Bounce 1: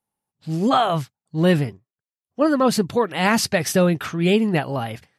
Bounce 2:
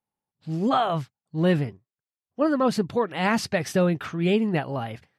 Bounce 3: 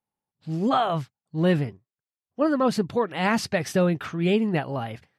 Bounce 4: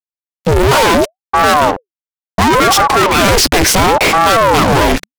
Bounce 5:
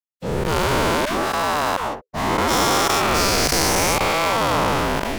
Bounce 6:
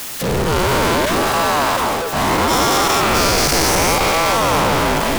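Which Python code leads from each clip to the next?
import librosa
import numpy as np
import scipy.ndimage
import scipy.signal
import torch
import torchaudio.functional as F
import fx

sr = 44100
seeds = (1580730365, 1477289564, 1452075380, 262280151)

y1 = fx.lowpass(x, sr, hz=3500.0, slope=6)
y1 = y1 * 10.0 ** (-4.0 / 20.0)
y2 = y1
y3 = fx.fuzz(y2, sr, gain_db=47.0, gate_db=-48.0)
y3 = fx.ring_lfo(y3, sr, carrier_hz=570.0, swing_pct=75, hz=0.71)
y3 = y3 * 10.0 ** (7.5 / 20.0)
y4 = fx.spec_dilate(y3, sr, span_ms=480)
y4 = y4 * 10.0 ** (-17.0 / 20.0)
y5 = y4 + 0.5 * 10.0 ** (-15.5 / 20.0) * np.sign(y4)
y5 = y5 + 10.0 ** (-10.5 / 20.0) * np.pad(y5, (int(645 * sr / 1000.0), 0))[:len(y5)]
y5 = y5 * 10.0 ** (-1.0 / 20.0)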